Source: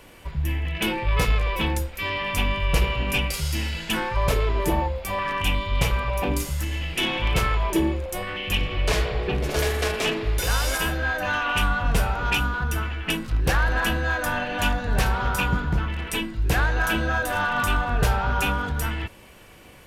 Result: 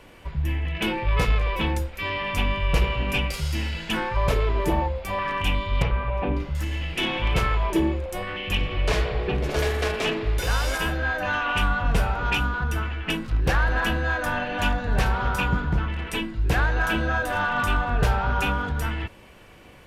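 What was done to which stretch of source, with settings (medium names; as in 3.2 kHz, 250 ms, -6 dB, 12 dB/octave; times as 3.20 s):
5.82–6.55 s: distance through air 320 m
whole clip: treble shelf 6.1 kHz -10 dB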